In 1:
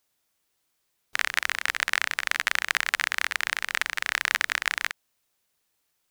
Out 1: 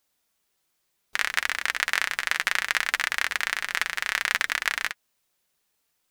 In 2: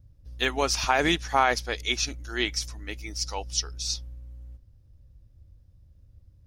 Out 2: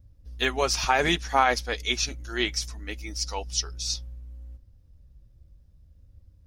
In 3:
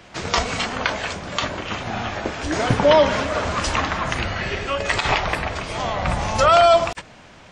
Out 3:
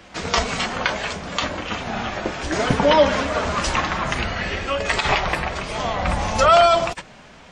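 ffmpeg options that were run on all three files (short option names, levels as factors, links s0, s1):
-af "flanger=delay=3.6:depth=2.1:regen=-51:speed=0.65:shape=triangular,volume=1.68"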